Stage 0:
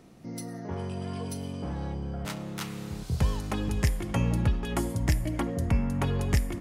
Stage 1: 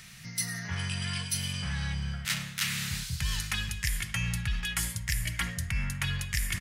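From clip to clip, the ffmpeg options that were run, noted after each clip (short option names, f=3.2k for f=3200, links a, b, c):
-af "firequalizer=gain_entry='entry(160,0);entry(280,-23);entry(1700,13)':delay=0.05:min_phase=1,areverse,acompressor=threshold=-32dB:ratio=6,areverse,volume=4dB"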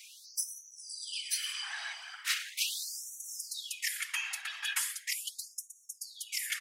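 -af "afftfilt=real='hypot(re,im)*cos(2*PI*random(0))':imag='hypot(re,im)*sin(2*PI*random(1))':win_size=512:overlap=0.75,afftfilt=real='re*gte(b*sr/1024,610*pow(5700/610,0.5+0.5*sin(2*PI*0.39*pts/sr)))':imag='im*gte(b*sr/1024,610*pow(5700/610,0.5+0.5*sin(2*PI*0.39*pts/sr)))':win_size=1024:overlap=0.75,volume=5.5dB"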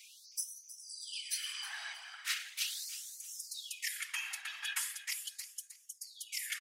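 -af "aecho=1:1:315|630|945:0.2|0.0519|0.0135,volume=-4dB"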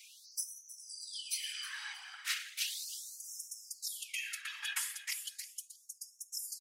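-af "afftfilt=real='re*gte(b*sr/1024,700*pow(5300/700,0.5+0.5*sin(2*PI*0.36*pts/sr)))':imag='im*gte(b*sr/1024,700*pow(5300/700,0.5+0.5*sin(2*PI*0.36*pts/sr)))':win_size=1024:overlap=0.75"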